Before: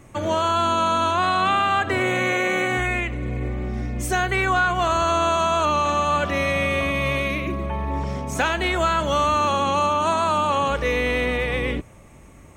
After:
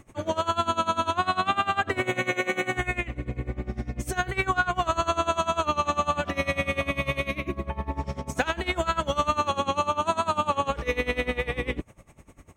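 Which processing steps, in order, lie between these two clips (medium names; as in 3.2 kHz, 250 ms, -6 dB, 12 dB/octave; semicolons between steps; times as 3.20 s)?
logarithmic tremolo 10 Hz, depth 20 dB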